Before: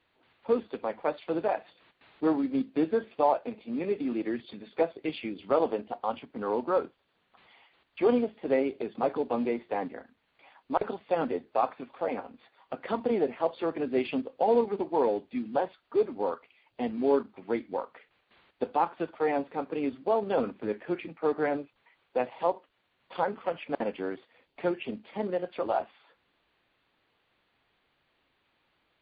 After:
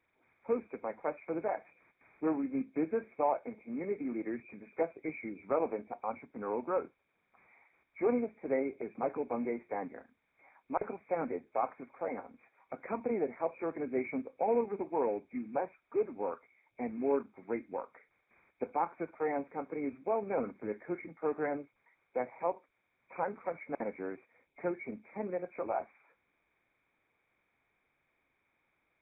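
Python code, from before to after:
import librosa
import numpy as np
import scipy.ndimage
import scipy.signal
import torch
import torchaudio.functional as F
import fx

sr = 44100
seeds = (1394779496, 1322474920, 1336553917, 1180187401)

y = fx.freq_compress(x, sr, knee_hz=2100.0, ratio=4.0)
y = y * librosa.db_to_amplitude(-6.0)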